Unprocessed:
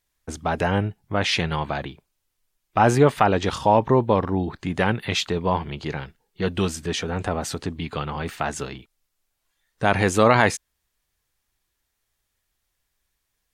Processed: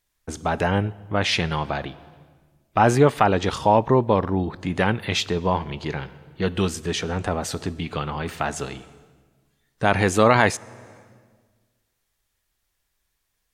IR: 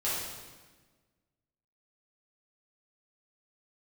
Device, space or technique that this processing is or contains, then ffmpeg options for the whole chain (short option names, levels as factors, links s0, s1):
compressed reverb return: -filter_complex "[0:a]asplit=2[s0][s1];[1:a]atrim=start_sample=2205[s2];[s1][s2]afir=irnorm=-1:irlink=0,acompressor=threshold=0.0891:ratio=5,volume=0.126[s3];[s0][s3]amix=inputs=2:normalize=0"